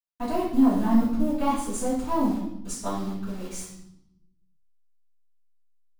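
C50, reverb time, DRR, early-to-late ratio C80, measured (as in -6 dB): 2.0 dB, 0.80 s, -11.5 dB, 5.5 dB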